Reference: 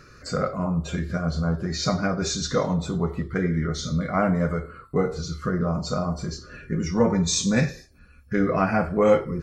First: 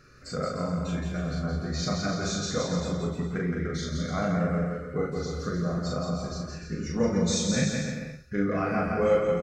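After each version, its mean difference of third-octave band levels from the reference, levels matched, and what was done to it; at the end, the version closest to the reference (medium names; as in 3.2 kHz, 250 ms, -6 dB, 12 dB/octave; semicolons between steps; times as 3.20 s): 6.0 dB: peaking EQ 950 Hz -10 dB 0.22 oct; doubling 40 ms -3 dB; on a send: bouncing-ball echo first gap 170 ms, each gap 0.75×, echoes 5; on the sum: trim -7.5 dB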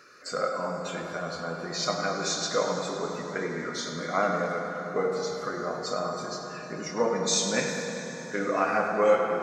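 9.0 dB: high-pass 410 Hz 12 dB/octave; filtered feedback delay 103 ms, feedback 80%, low-pass 3.6 kHz, level -8.5 dB; plate-style reverb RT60 4.5 s, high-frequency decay 0.75×, pre-delay 0 ms, DRR 4.5 dB; trim -2 dB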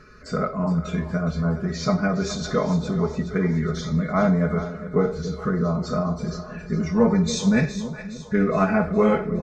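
4.0 dB: low-pass 2.8 kHz 6 dB/octave; comb 4.7 ms, depth 59%; on a send: two-band feedback delay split 540 Hz, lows 287 ms, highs 415 ms, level -12 dB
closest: third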